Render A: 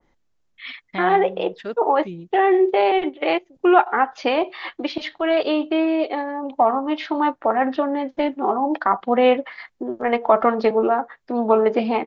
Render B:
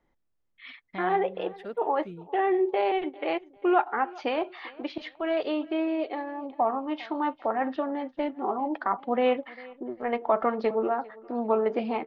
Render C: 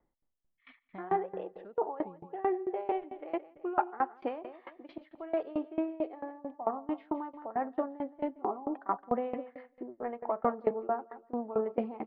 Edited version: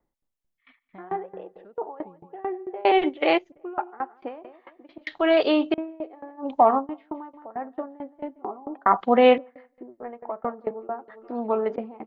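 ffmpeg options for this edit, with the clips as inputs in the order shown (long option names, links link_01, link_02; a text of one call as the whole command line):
ffmpeg -i take0.wav -i take1.wav -i take2.wav -filter_complex "[0:a]asplit=4[link_01][link_02][link_03][link_04];[2:a]asplit=6[link_05][link_06][link_07][link_08][link_09][link_10];[link_05]atrim=end=2.852[link_11];[link_01]atrim=start=2.848:end=3.522[link_12];[link_06]atrim=start=3.518:end=5.072[link_13];[link_02]atrim=start=5.068:end=5.742[link_14];[link_07]atrim=start=5.738:end=6.47[link_15];[link_03]atrim=start=6.37:end=6.87[link_16];[link_08]atrim=start=6.77:end=8.862[link_17];[link_04]atrim=start=8.858:end=9.382[link_18];[link_09]atrim=start=9.378:end=11.082[link_19];[1:a]atrim=start=11.078:end=11.762[link_20];[link_10]atrim=start=11.758[link_21];[link_11][link_12]acrossfade=duration=0.004:curve1=hsin:curve2=hsin[link_22];[link_22][link_13]acrossfade=duration=0.004:curve1=hsin:curve2=hsin[link_23];[link_23][link_14]acrossfade=duration=0.004:curve1=hsin:curve2=hsin[link_24];[link_24][link_15]acrossfade=duration=0.004:curve1=hsin:curve2=hsin[link_25];[link_25][link_16]acrossfade=duration=0.1:curve1=tri:curve2=tri[link_26];[link_26][link_17]acrossfade=duration=0.1:curve1=tri:curve2=tri[link_27];[link_27][link_18]acrossfade=duration=0.004:curve1=hsin:curve2=hsin[link_28];[link_28][link_19]acrossfade=duration=0.004:curve1=hsin:curve2=hsin[link_29];[link_29][link_20]acrossfade=duration=0.004:curve1=hsin:curve2=hsin[link_30];[link_30][link_21]acrossfade=duration=0.004:curve1=hsin:curve2=hsin" out.wav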